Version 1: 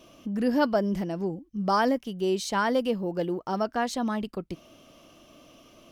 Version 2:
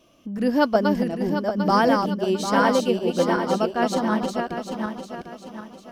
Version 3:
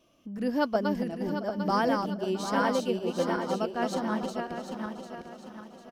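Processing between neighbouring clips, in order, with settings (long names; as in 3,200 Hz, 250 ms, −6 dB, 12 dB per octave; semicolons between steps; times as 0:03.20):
feedback delay that plays each chunk backwards 374 ms, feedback 71%, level −3.5 dB; expander for the loud parts 1.5 to 1, over −39 dBFS; level +5 dB
repeating echo 672 ms, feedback 39%, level −17 dB; level −7.5 dB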